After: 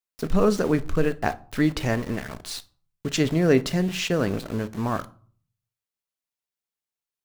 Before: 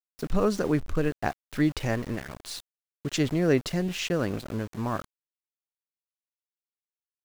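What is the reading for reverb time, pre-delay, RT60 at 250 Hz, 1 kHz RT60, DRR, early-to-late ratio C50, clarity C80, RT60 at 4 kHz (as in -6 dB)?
0.45 s, 4 ms, 0.55 s, 0.45 s, 12.0 dB, 20.0 dB, 26.0 dB, 0.30 s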